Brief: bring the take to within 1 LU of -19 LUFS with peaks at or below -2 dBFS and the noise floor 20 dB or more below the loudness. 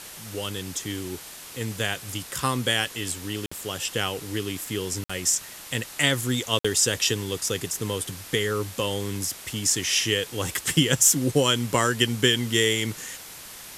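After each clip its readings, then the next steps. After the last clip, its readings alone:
dropouts 3; longest dropout 55 ms; noise floor -42 dBFS; noise floor target -45 dBFS; loudness -24.5 LUFS; peak -3.5 dBFS; loudness target -19.0 LUFS
-> interpolate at 3.46/5.04/6.59, 55 ms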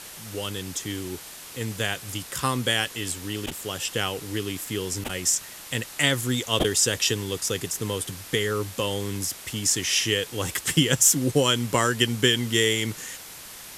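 dropouts 0; noise floor -42 dBFS; noise floor target -45 dBFS
-> denoiser 6 dB, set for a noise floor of -42 dBFS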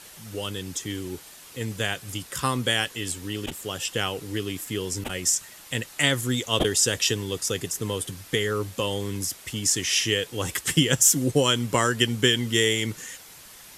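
noise floor -47 dBFS; loudness -24.5 LUFS; peak -3.5 dBFS; loudness target -19.0 LUFS
-> gain +5.5 dB; limiter -2 dBFS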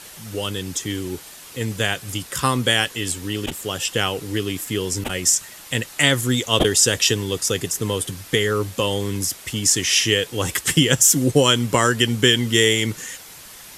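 loudness -19.5 LUFS; peak -2.0 dBFS; noise floor -41 dBFS

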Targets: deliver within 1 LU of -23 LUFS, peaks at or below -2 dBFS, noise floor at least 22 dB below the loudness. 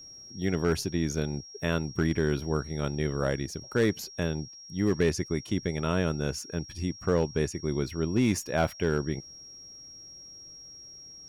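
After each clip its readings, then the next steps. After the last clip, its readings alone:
clipped 0.3%; flat tops at -17.0 dBFS; steady tone 5600 Hz; tone level -45 dBFS; loudness -29.5 LUFS; peak -17.0 dBFS; loudness target -23.0 LUFS
-> clip repair -17 dBFS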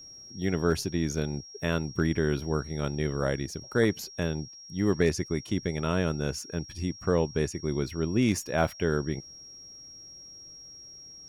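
clipped 0.0%; steady tone 5600 Hz; tone level -45 dBFS
-> notch 5600 Hz, Q 30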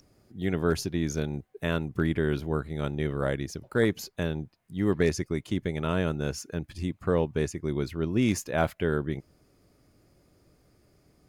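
steady tone none; loudness -29.5 LUFS; peak -11.0 dBFS; loudness target -23.0 LUFS
-> gain +6.5 dB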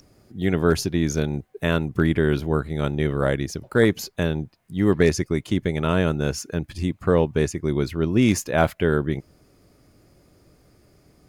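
loudness -23.0 LUFS; peak -4.5 dBFS; noise floor -58 dBFS

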